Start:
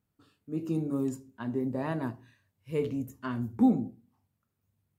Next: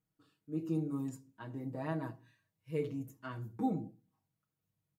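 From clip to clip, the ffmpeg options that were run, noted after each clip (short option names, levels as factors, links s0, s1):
-af "aecho=1:1:6.3:0.9,volume=0.355"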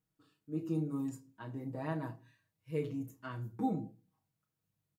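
-filter_complex "[0:a]asplit=2[s0][s1];[s1]adelay=33,volume=0.282[s2];[s0][s2]amix=inputs=2:normalize=0"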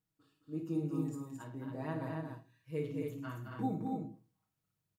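-af "aecho=1:1:54|104|216|273:0.316|0.188|0.501|0.596,volume=0.75"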